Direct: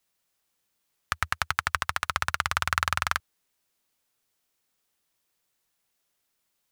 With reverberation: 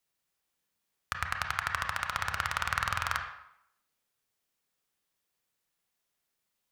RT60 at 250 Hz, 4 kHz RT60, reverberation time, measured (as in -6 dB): 0.70 s, 0.65 s, 0.75 s